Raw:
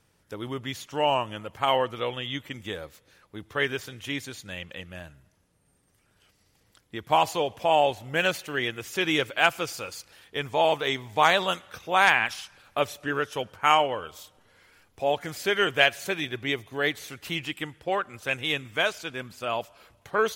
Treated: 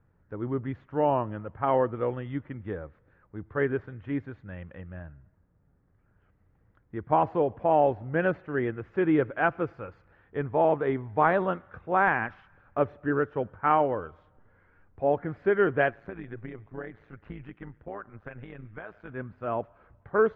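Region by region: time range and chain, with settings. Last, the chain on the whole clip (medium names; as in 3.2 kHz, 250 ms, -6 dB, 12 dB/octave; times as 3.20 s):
7.74–8.30 s: low-pass 8.1 kHz + peaking EQ 5.4 kHz +7 dB 0.63 oct
15.91–19.09 s: compression 10:1, threshold -28 dBFS + AM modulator 110 Hz, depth 60%
whole clip: dynamic bell 330 Hz, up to +7 dB, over -38 dBFS, Q 0.78; Chebyshev low-pass 1.6 kHz, order 3; bass shelf 170 Hz +10.5 dB; trim -3.5 dB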